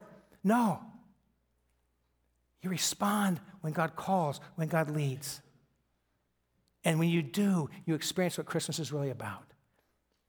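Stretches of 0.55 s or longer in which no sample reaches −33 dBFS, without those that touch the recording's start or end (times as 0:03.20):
0:00.75–0:02.65
0:05.35–0:06.85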